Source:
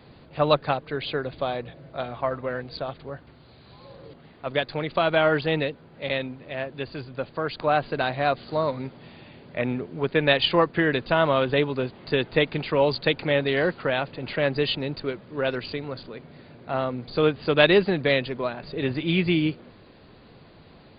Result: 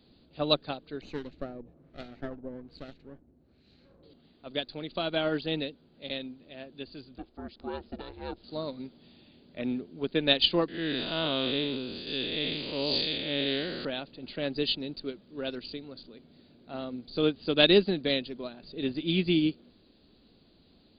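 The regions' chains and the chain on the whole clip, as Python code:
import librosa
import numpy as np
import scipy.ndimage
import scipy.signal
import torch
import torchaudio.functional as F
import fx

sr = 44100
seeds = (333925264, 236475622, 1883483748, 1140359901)

y = fx.chain(x, sr, fx.lower_of_two(delay_ms=0.46),
    fx.filter_lfo_lowpass(shape='sine', hz=1.2, low_hz=680.0, high_hz=3200.0, q=1.0), at=(1.01, 4.03))
y = fx.chain(y, sr, fx.lowpass(hz=1600.0, slope=6),
    fx.ring_mod(carrier_hz=220.0), at=(7.18, 8.44))
y = fx.chain(y, sr, fx.spec_blur(span_ms=196.0),
    fx.high_shelf(hz=2100.0, db=12.0),
    fx.sustainer(db_per_s=23.0), at=(10.68, 13.85))
y = fx.graphic_eq(y, sr, hz=(125, 250, 500, 1000, 2000, 4000), db=(-11, 4, -5, -10, -10, 5))
y = fx.upward_expand(y, sr, threshold_db=-37.0, expansion=1.5)
y = F.gain(torch.from_numpy(y), 2.0).numpy()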